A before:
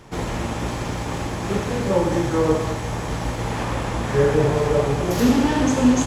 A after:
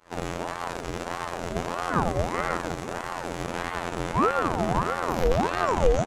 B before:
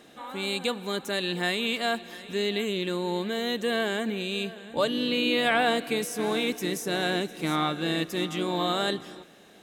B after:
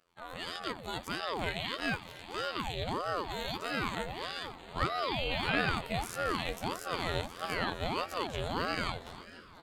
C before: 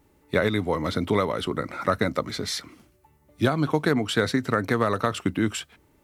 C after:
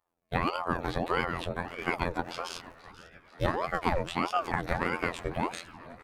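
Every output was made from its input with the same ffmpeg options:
ffmpeg -i in.wav -filter_complex "[0:a]agate=range=-17dB:threshold=-45dB:ratio=16:detection=peak,acrossover=split=120|3000[link_01][link_02][link_03];[link_03]alimiter=level_in=5.5dB:limit=-24dB:level=0:latency=1:release=192,volume=-5.5dB[link_04];[link_01][link_02][link_04]amix=inputs=3:normalize=0,afftfilt=real='hypot(re,im)*cos(PI*b)':imag='0':win_size=2048:overlap=0.75,asplit=7[link_05][link_06][link_07][link_08][link_09][link_10][link_11];[link_06]adelay=485,afreqshift=120,volume=-18dB[link_12];[link_07]adelay=970,afreqshift=240,volume=-22.2dB[link_13];[link_08]adelay=1455,afreqshift=360,volume=-26.3dB[link_14];[link_09]adelay=1940,afreqshift=480,volume=-30.5dB[link_15];[link_10]adelay=2425,afreqshift=600,volume=-34.6dB[link_16];[link_11]adelay=2910,afreqshift=720,volume=-38.8dB[link_17];[link_05][link_12][link_13][link_14][link_15][link_16][link_17]amix=inputs=7:normalize=0,aeval=exprs='val(0)*sin(2*PI*600*n/s+600*0.65/1.6*sin(2*PI*1.6*n/s))':channel_layout=same" out.wav

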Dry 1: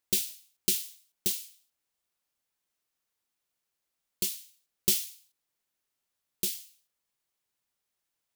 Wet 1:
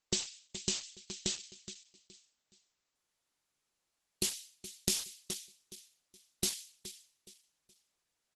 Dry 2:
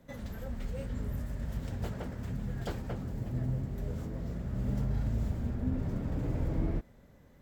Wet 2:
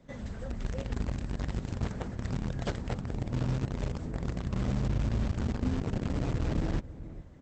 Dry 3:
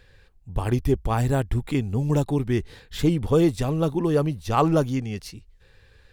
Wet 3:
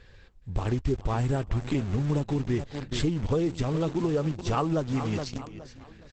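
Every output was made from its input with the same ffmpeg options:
ffmpeg -i in.wav -filter_complex "[0:a]aecho=1:1:420|840|1260:0.188|0.0603|0.0193,asplit=2[link_01][link_02];[link_02]acrusher=bits=4:mix=0:aa=0.000001,volume=-6.5dB[link_03];[link_01][link_03]amix=inputs=2:normalize=0,acompressor=threshold=-26dB:ratio=4,asoftclip=type=tanh:threshold=-14dB,volume=2dB" -ar 48000 -c:a libopus -b:a 12k out.opus

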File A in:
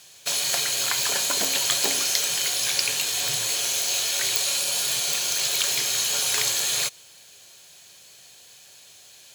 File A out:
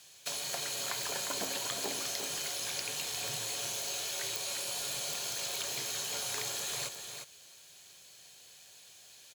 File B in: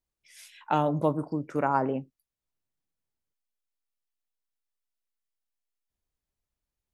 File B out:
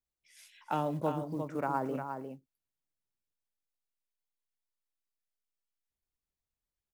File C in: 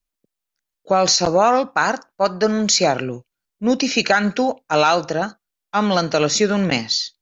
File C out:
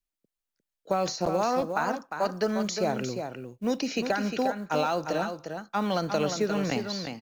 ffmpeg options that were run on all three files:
ffmpeg -i in.wav -filter_complex "[0:a]acrossover=split=410|1200[link_01][link_02][link_03];[link_01]acompressor=threshold=-21dB:ratio=4[link_04];[link_02]acompressor=threshold=-20dB:ratio=4[link_05];[link_03]acompressor=threshold=-29dB:ratio=4[link_06];[link_04][link_05][link_06]amix=inputs=3:normalize=0,aecho=1:1:354:0.447,acrusher=bits=8:mode=log:mix=0:aa=0.000001,volume=-7dB" out.wav

